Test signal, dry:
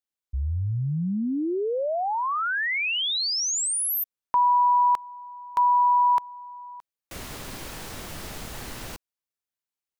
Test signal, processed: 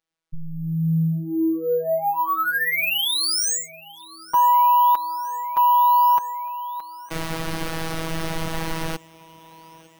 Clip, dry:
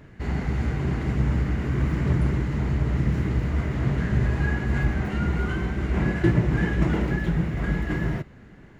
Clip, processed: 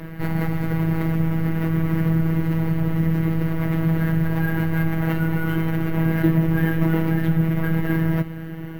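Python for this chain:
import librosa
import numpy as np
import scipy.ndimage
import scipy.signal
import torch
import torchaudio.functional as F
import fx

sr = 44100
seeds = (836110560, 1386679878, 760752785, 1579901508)

p1 = fx.high_shelf(x, sr, hz=3000.0, db=-6.5)
p2 = fx.over_compress(p1, sr, threshold_db=-33.0, ratio=-1.0)
p3 = p1 + (p2 * 10.0 ** (-0.5 / 20.0))
p4 = 10.0 ** (-12.0 / 20.0) * np.tanh(p3 / 10.0 ** (-12.0 / 20.0))
p5 = fx.robotise(p4, sr, hz=162.0)
p6 = p5 + fx.echo_thinned(p5, sr, ms=907, feedback_pct=67, hz=160.0, wet_db=-22, dry=0)
p7 = np.repeat(scipy.signal.resample_poly(p6, 1, 3), 3)[:len(p6)]
y = p7 * 10.0 ** (4.5 / 20.0)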